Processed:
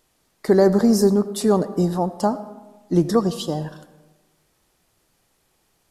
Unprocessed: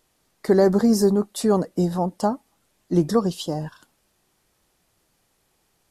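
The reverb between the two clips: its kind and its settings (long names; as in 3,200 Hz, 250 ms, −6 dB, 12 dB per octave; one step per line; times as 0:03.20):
comb and all-pass reverb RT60 1.2 s, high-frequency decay 0.55×, pre-delay 40 ms, DRR 14 dB
level +1.5 dB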